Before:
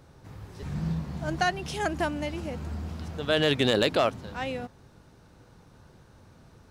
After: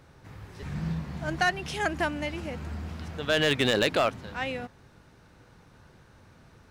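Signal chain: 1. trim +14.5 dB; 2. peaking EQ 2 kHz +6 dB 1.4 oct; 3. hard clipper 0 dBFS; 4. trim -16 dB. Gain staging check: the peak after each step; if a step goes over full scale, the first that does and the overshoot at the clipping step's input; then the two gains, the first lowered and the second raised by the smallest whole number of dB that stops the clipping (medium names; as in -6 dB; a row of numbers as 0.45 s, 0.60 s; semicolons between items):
+1.0 dBFS, +6.0 dBFS, 0.0 dBFS, -16.0 dBFS; step 1, 6.0 dB; step 1 +8.5 dB, step 4 -10 dB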